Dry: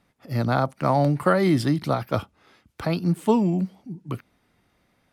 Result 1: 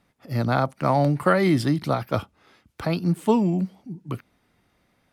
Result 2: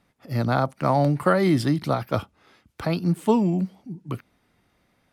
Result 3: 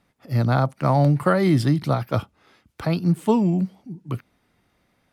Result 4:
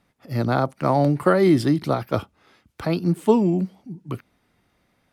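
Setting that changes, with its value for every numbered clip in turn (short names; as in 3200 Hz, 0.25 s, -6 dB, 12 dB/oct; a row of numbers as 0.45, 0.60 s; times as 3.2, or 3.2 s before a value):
dynamic EQ, frequency: 2300, 9300, 130, 370 Hz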